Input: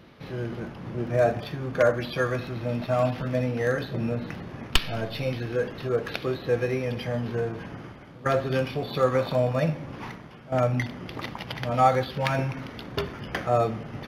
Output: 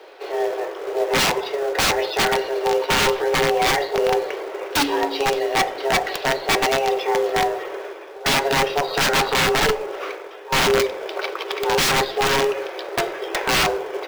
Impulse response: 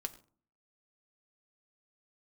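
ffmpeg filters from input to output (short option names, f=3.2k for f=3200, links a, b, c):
-filter_complex "[0:a]afreqshift=280,aeval=exprs='(mod(9.44*val(0)+1,2)-1)/9.44':c=same,acrusher=bits=4:mode=log:mix=0:aa=0.000001,asplit=2[a][b];[1:a]atrim=start_sample=2205,lowpass=7.4k[c];[b][c]afir=irnorm=-1:irlink=0,volume=1dB[d];[a][d]amix=inputs=2:normalize=0,volume=2dB"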